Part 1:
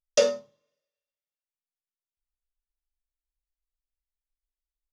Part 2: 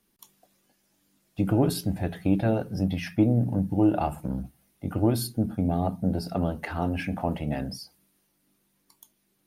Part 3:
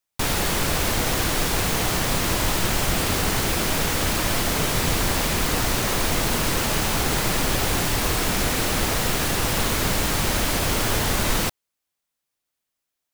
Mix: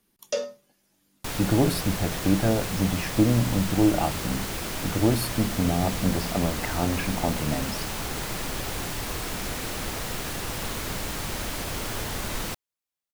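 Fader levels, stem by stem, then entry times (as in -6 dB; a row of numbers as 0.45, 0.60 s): -7.0, +1.0, -9.0 dB; 0.15, 0.00, 1.05 s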